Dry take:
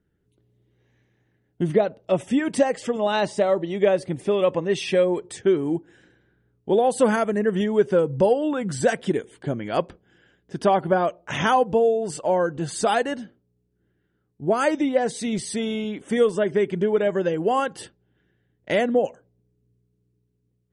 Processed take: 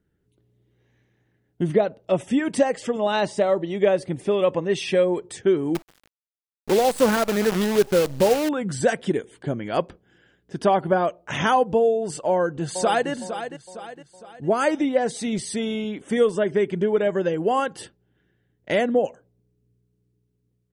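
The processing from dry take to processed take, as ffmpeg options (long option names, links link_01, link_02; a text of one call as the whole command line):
ffmpeg -i in.wav -filter_complex "[0:a]asettb=1/sr,asplit=3[link_01][link_02][link_03];[link_01]atrim=end=5.754[link_04];[link_02]atrim=start=5.75:end=8.49,asetpts=PTS-STARTPTS,afade=type=in:duration=0.004:curve=qsin,afade=type=out:start_time=2.736:duration=0.004:curve=qsin,acrusher=bits=5:dc=4:mix=0:aa=0.000001[link_05];[link_03]atrim=start=8.486[link_06];[link_04][link_05]acrossfade=duration=0.004:curve1=hsin:curve2=qsin[link_07];[link_07][link_06]acrossfade=duration=0.004:curve1=qsin:curve2=hsin,asplit=2[link_08][link_09];[link_09]afade=type=in:start_time=12.29:duration=0.01,afade=type=out:start_time=13.1:duration=0.01,aecho=0:1:460|920|1380|1840|2300:0.316228|0.142302|0.0640361|0.0288163|0.0129673[link_10];[link_08][link_10]amix=inputs=2:normalize=0" out.wav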